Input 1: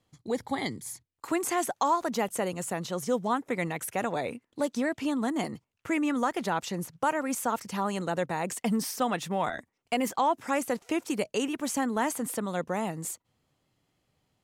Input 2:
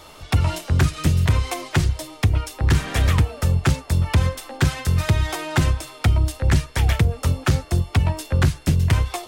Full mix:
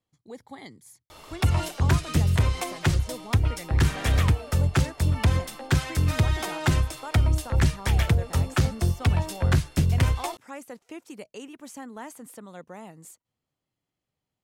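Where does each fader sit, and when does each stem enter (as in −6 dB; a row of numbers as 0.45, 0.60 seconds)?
−11.5, −3.5 decibels; 0.00, 1.10 seconds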